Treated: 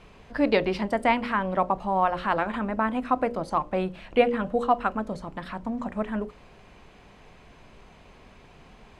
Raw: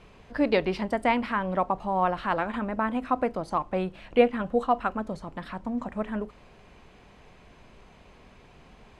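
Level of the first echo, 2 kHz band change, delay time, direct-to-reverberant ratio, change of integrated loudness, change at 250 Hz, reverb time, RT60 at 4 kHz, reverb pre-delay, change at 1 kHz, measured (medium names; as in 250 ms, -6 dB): no echo, +2.0 dB, no echo, no reverb, +1.5 dB, +1.0 dB, no reverb, no reverb, no reverb, +2.0 dB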